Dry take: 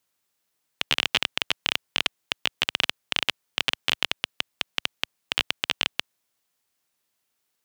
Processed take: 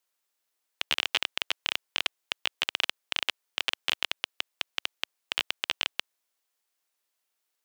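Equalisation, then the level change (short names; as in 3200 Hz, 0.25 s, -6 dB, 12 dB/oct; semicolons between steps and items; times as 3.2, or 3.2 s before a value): HPF 370 Hz 12 dB/oct; -4.0 dB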